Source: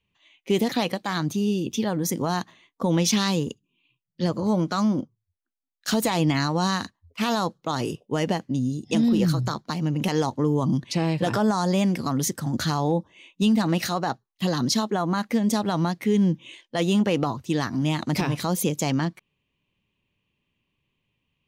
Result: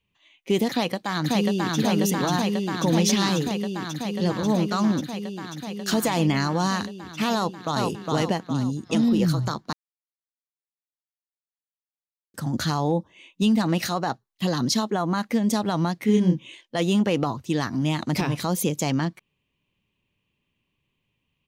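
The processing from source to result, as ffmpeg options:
-filter_complex "[0:a]asplit=2[s0][s1];[s1]afade=t=in:st=0.7:d=0.01,afade=t=out:st=1.77:d=0.01,aecho=0:1:540|1080|1620|2160|2700|3240|3780|4320|4860|5400|5940|6480:0.891251|0.757563|0.643929|0.547339|0.465239|0.395453|0.336135|0.285715|0.242857|0.206429|0.175464|0.149145[s2];[s0][s2]amix=inputs=2:normalize=0,asettb=1/sr,asplit=3[s3][s4][s5];[s3]atrim=end=5.974[s6];[s4]atrim=start=5.97:end=6.78,asetpts=PTS-STARTPTS,afade=t=in:d=0.004:c=qsin,afade=t=out:st=0.806:d=0.004:c=qsin,bandreject=f=3900:w=12[s7];[s5]atrim=start=6.776[s8];[s6][s7]acrossfade=d=0.004:c1=hsin:c2=qsin[s9];[s9][s8]acrossfade=d=0.004:c1=qsin:c2=hsin,asplit=2[s10][s11];[s11]afade=t=in:st=7.35:d=0.01,afade=t=out:st=7.81:d=0.01,aecho=0:1:410|820|1230|1640|2050|2460:0.794328|0.357448|0.160851|0.0723832|0.0325724|0.0146576[s12];[s10][s12]amix=inputs=2:normalize=0,asettb=1/sr,asplit=3[s13][s14][s15];[s13]atrim=end=16.054[s16];[s14]atrim=start=16.05:end=16.46,asetpts=PTS-STARTPTS,afade=t=in:d=0.004:c=qsin,afade=t=out:st=0.406:d=0.004:c=qsin,asplit=2[s17][s18];[s18]adelay=28,volume=0.75[s19];[s17][s19]amix=inputs=2:normalize=0,atrim=end_sample=18081[s20];[s15]atrim=start=16.456[s21];[s16][s20]acrossfade=d=0.004:c1=hsin:c2=qsin[s22];[s22][s21]acrossfade=d=0.004:c1=qsin:c2=hsin,asplit=3[s23][s24][s25];[s23]atrim=end=9.73,asetpts=PTS-STARTPTS,afade=t=out:st=9.726:d=0.004:c=hsin[s26];[s24]atrim=start=9.73:end=12.34,asetpts=PTS-STARTPTS,volume=0[s27];[s25]atrim=start=12.34,asetpts=PTS-STARTPTS,afade=t=in:d=0.004:c=hsin[s28];[s26][s27][s28]concat=n=3:v=0:a=1"

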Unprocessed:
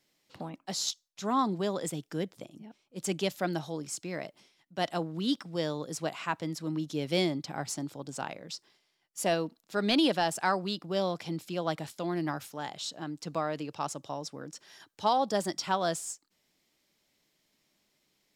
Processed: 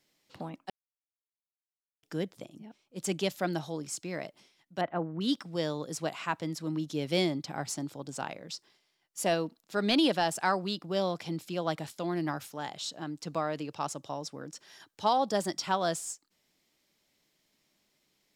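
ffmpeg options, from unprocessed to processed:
-filter_complex "[0:a]asettb=1/sr,asplit=3[s0][s1][s2];[s0]atrim=end=4.814[s3];[s1]atrim=start=4.81:end=5.21,asetpts=PTS-STARTPTS,afade=t=in:d=0.004:c=qsin,afade=t=out:st=0.396:d=0.004:c=qsin,lowpass=f=2000:w=0.5412,lowpass=f=2000:w=1.3066[s4];[s2]atrim=start=5.206[s5];[s3][s4]acrossfade=d=0.004:c1=hsin:c2=qsin[s6];[s6][s5]acrossfade=d=0.004:c1=qsin:c2=hsin,asplit=3[s7][s8][s9];[s7]atrim=end=0.7,asetpts=PTS-STARTPTS,afade=t=out:st=0.696:d=0.004:c=hsin[s10];[s8]atrim=start=0.7:end=2.03,asetpts=PTS-STARTPTS,volume=0[s11];[s9]atrim=start=2.03,asetpts=PTS-STARTPTS,afade=t=in:d=0.004:c=hsin[s12];[s10][s11][s12]concat=n=3:v=0:a=1"

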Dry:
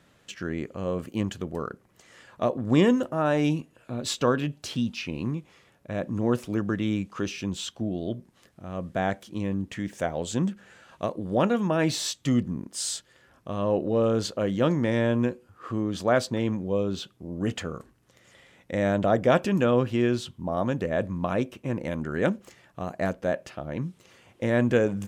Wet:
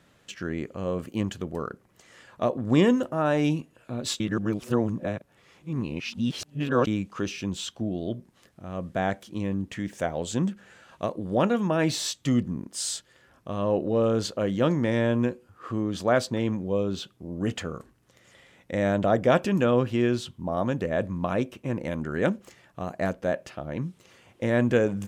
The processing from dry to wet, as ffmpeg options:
-filter_complex "[0:a]asplit=3[s0][s1][s2];[s0]atrim=end=4.202[s3];[s1]atrim=start=4.198:end=6.872,asetpts=PTS-STARTPTS,areverse[s4];[s2]atrim=start=6.868[s5];[s3][s4]acrossfade=d=0.004:c1=hsin:c2=hsin[s6];[s6][s5]acrossfade=d=0.004:c1=hsin:c2=hsin"

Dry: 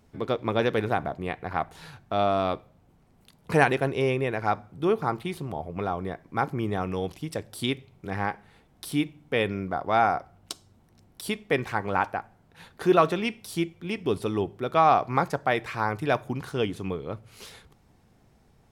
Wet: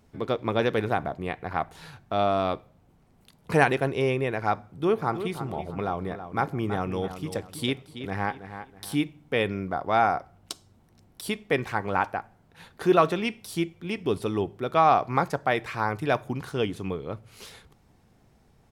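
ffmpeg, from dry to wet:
-filter_complex "[0:a]asplit=3[s0][s1][s2];[s0]afade=t=out:st=4.91:d=0.02[s3];[s1]asplit=2[s4][s5];[s5]adelay=325,lowpass=f=3800:p=1,volume=0.299,asplit=2[s6][s7];[s7]adelay=325,lowpass=f=3800:p=1,volume=0.33,asplit=2[s8][s9];[s9]adelay=325,lowpass=f=3800:p=1,volume=0.33,asplit=2[s10][s11];[s11]adelay=325,lowpass=f=3800:p=1,volume=0.33[s12];[s4][s6][s8][s10][s12]amix=inputs=5:normalize=0,afade=t=in:st=4.91:d=0.02,afade=t=out:st=8.94:d=0.02[s13];[s2]afade=t=in:st=8.94:d=0.02[s14];[s3][s13][s14]amix=inputs=3:normalize=0"

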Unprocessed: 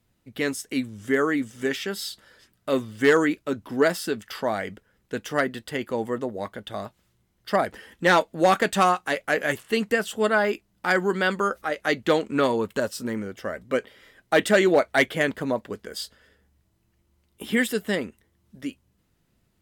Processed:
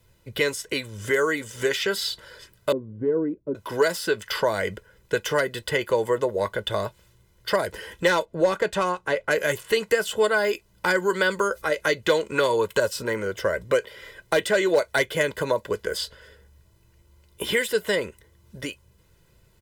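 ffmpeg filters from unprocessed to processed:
-filter_complex "[0:a]asettb=1/sr,asplit=3[s0][s1][s2];[s0]atrim=end=2.724[s3];[s1]atrim=start=2.72:end=3.55,asetpts=PTS-STARTPTS,afade=t=in:d=0.004:c=qsin,afade=t=out:st=0.826:d=0.004:c=qsin,lowpass=f=250:t=q:w=2.9[s4];[s2]atrim=start=3.546[s5];[s3][s4]acrossfade=d=0.004:c1=hsin:c2=qsin[s6];[s6][s5]acrossfade=d=0.004:c1=qsin:c2=hsin,asettb=1/sr,asplit=3[s7][s8][s9];[s7]atrim=end=8.254[s10];[s8]atrim=start=8.25:end=9.31,asetpts=PTS-STARTPTS,afade=t=in:d=0.004:c=qsin,afade=t=out:st=1.056:d=0.004:c=qsin,lowpass=f=1400:p=1[s11];[s9]atrim=start=9.306[s12];[s10][s11]acrossfade=d=0.004:c1=hsin:c2=qsin[s13];[s13][s12]acrossfade=d=0.004:c1=qsin:c2=hsin,acrossover=split=450|4300[s14][s15][s16];[s14]acompressor=threshold=0.0141:ratio=4[s17];[s15]acompressor=threshold=0.0251:ratio=4[s18];[s16]acompressor=threshold=0.00631:ratio=4[s19];[s17][s18][s19]amix=inputs=3:normalize=0,aecho=1:1:2:0.7,volume=2.37"

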